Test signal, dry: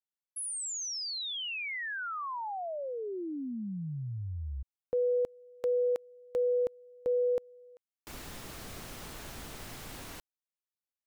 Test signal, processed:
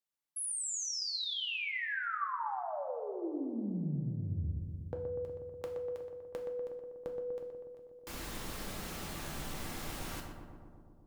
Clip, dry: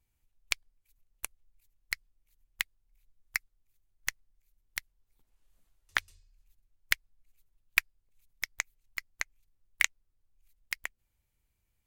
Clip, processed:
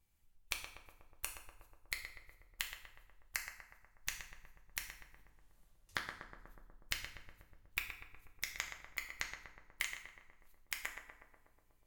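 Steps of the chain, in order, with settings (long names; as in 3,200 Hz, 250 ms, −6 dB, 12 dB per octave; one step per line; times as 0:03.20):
downward compressor 6 to 1, threshold −37 dBFS
on a send: feedback echo with a low-pass in the loop 122 ms, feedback 78%, low-pass 1,500 Hz, level −5 dB
on the sum: dynamic equaliser 490 Hz, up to −4 dB, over −48 dBFS, Q 1.4
coupled-rooms reverb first 0.55 s, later 1.7 s, from −25 dB, DRR 3 dB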